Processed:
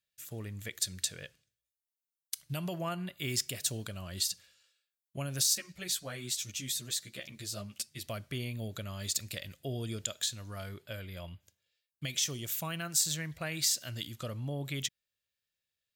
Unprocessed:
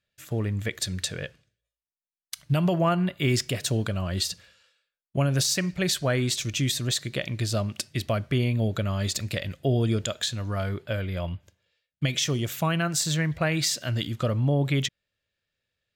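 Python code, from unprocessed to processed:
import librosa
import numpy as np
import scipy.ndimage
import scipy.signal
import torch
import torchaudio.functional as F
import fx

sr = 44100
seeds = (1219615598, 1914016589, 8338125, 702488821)

y = scipy.signal.lfilter([1.0, -0.8], [1.0], x)
y = fx.ensemble(y, sr, at=(5.55, 8.04))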